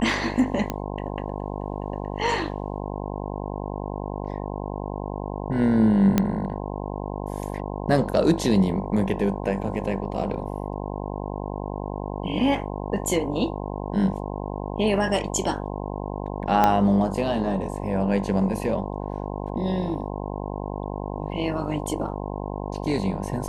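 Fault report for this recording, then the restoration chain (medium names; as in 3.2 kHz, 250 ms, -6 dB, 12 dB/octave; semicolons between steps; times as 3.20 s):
buzz 50 Hz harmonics 21 -31 dBFS
0.70 s: pop -12 dBFS
6.18 s: pop -6 dBFS
16.64 s: pop -6 dBFS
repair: de-click; de-hum 50 Hz, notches 21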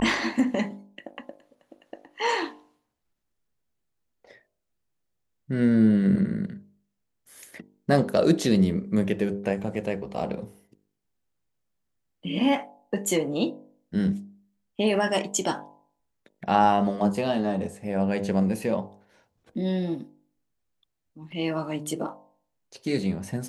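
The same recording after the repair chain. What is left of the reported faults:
16.64 s: pop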